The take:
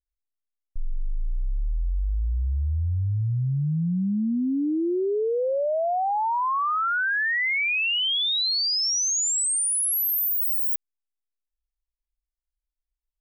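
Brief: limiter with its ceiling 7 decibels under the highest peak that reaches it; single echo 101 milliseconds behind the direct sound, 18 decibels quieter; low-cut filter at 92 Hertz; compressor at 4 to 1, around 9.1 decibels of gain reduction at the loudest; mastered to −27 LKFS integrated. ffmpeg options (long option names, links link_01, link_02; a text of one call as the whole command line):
ffmpeg -i in.wav -af "highpass=92,acompressor=threshold=-34dB:ratio=4,alimiter=level_in=13dB:limit=-24dB:level=0:latency=1,volume=-13dB,aecho=1:1:101:0.126,volume=12dB" out.wav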